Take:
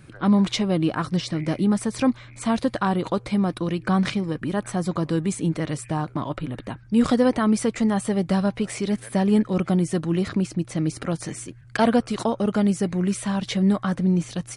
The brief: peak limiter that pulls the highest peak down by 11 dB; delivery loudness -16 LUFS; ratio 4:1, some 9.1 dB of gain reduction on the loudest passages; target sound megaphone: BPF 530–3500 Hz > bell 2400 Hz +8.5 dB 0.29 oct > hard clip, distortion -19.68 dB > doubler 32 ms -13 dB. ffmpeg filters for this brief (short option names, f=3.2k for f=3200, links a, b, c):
-filter_complex "[0:a]acompressor=threshold=-25dB:ratio=4,alimiter=level_in=0.5dB:limit=-24dB:level=0:latency=1,volume=-0.5dB,highpass=530,lowpass=3.5k,equalizer=f=2.4k:t=o:w=0.29:g=8.5,asoftclip=type=hard:threshold=-30dB,asplit=2[a][b];[b]adelay=32,volume=-13dB[c];[a][c]amix=inputs=2:normalize=0,volume=25dB"